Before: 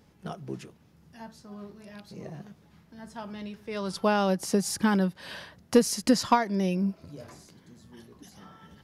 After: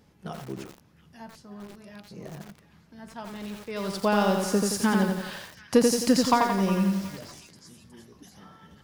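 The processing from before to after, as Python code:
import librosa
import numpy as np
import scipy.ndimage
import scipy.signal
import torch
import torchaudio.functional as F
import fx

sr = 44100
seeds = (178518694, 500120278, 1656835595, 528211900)

y = fx.echo_stepped(x, sr, ms=365, hz=1500.0, octaves=0.7, feedback_pct=70, wet_db=-11.0)
y = fx.echo_crushed(y, sr, ms=87, feedback_pct=55, bits=7, wet_db=-3)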